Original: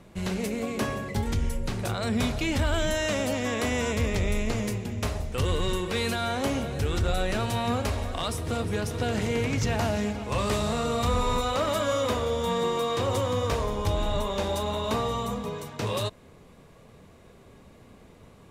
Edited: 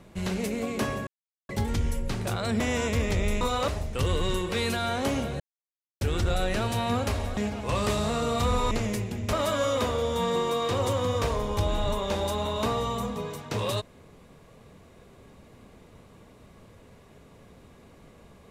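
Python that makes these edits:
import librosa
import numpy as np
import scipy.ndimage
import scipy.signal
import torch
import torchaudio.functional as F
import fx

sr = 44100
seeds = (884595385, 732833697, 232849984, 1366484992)

y = fx.edit(x, sr, fx.insert_silence(at_s=1.07, length_s=0.42),
    fx.cut(start_s=2.18, length_s=1.46),
    fx.swap(start_s=4.45, length_s=0.62, other_s=11.34, other_length_s=0.27),
    fx.insert_silence(at_s=6.79, length_s=0.61),
    fx.cut(start_s=8.15, length_s=1.85), tone=tone)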